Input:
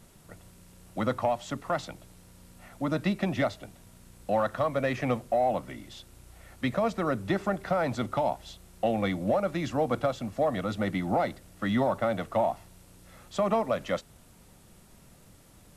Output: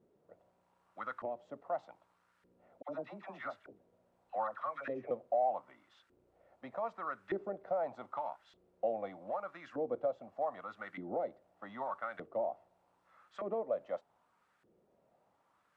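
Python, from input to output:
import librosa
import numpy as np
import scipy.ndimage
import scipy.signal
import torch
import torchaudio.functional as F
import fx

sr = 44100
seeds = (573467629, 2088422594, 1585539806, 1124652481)

y = fx.dispersion(x, sr, late='lows', ms=73.0, hz=890.0, at=(2.82, 5.11))
y = fx.filter_lfo_bandpass(y, sr, shape='saw_up', hz=0.82, low_hz=370.0, high_hz=1600.0, q=2.6)
y = F.gain(torch.from_numpy(y), -4.5).numpy()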